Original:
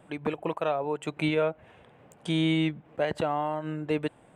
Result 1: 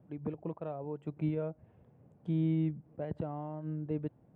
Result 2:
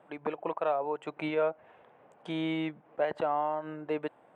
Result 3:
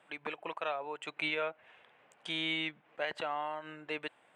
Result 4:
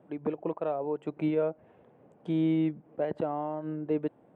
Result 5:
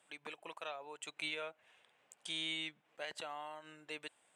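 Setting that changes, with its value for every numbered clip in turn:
band-pass filter, frequency: 110 Hz, 850 Hz, 2.4 kHz, 330 Hz, 6.6 kHz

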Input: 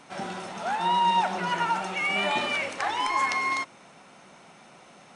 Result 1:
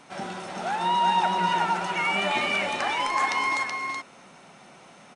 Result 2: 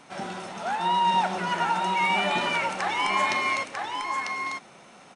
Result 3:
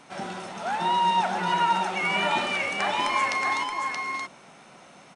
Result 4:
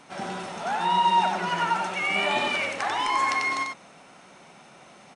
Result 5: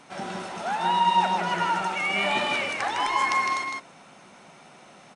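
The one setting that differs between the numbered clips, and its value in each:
delay, time: 376 ms, 946 ms, 626 ms, 93 ms, 157 ms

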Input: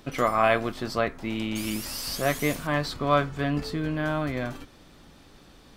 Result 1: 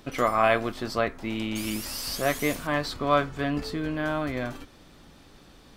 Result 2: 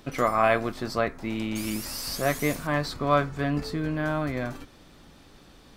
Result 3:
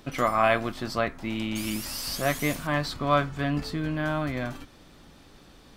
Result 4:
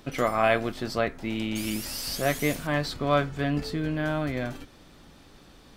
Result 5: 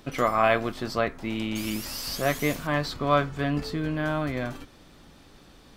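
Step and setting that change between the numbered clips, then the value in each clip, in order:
dynamic bell, frequency: 150 Hz, 3.1 kHz, 440 Hz, 1.1 kHz, 9.3 kHz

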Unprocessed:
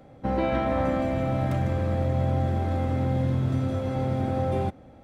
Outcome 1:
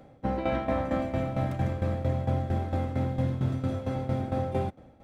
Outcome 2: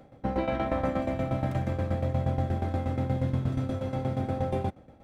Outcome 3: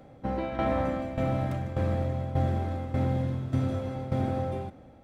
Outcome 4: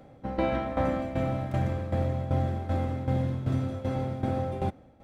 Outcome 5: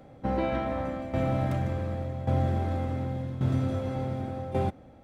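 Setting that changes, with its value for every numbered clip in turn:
tremolo, rate: 4.4 Hz, 8.4 Hz, 1.7 Hz, 2.6 Hz, 0.88 Hz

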